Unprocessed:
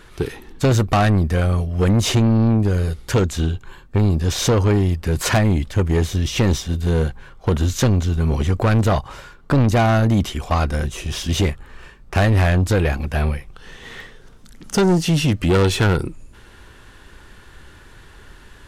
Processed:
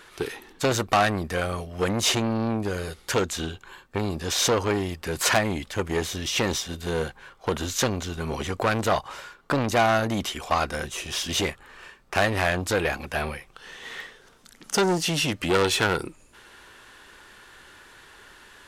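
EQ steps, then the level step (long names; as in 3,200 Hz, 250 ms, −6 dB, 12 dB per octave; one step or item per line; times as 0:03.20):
low-shelf EQ 160 Hz −11.5 dB
low-shelf EQ 340 Hz −8 dB
0.0 dB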